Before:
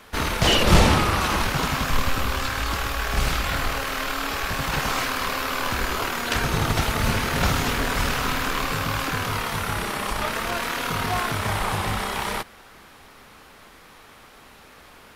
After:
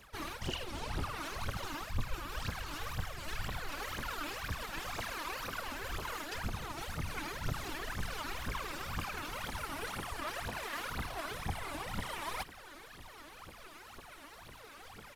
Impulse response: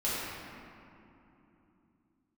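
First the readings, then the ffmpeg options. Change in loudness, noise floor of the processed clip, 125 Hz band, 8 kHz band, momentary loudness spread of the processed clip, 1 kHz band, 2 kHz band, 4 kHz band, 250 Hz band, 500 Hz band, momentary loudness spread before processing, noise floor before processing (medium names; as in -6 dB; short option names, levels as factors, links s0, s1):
-16.0 dB, -53 dBFS, -16.5 dB, -16.0 dB, 12 LU, -16.0 dB, -15.5 dB, -16.5 dB, -17.5 dB, -17.0 dB, 7 LU, -49 dBFS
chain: -af "areverse,acompressor=threshold=0.0251:ratio=16,areverse,aresample=32000,aresample=44100,afftfilt=real='hypot(re,im)*cos(2*PI*random(0))':imag='hypot(re,im)*sin(2*PI*random(1))':win_size=512:overlap=0.75,aphaser=in_gain=1:out_gain=1:delay=3.6:decay=0.77:speed=2:type=triangular,volume=0.794"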